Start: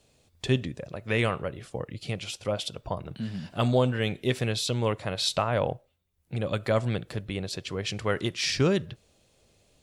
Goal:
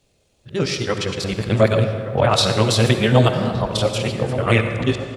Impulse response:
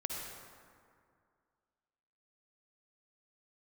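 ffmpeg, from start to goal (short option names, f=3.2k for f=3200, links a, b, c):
-filter_complex "[0:a]areverse,flanger=delay=22.5:depth=5.1:speed=0.5,atempo=1.9,dynaudnorm=f=390:g=5:m=11dB,asplit=2[a][b];[b]adelay=1166,volume=-12dB,highshelf=f=4k:g=-26.2[c];[a][c]amix=inputs=2:normalize=0,asplit=2[d][e];[1:a]atrim=start_sample=2205[f];[e][f]afir=irnorm=-1:irlink=0,volume=-1.5dB[g];[d][g]amix=inputs=2:normalize=0,volume=-1dB"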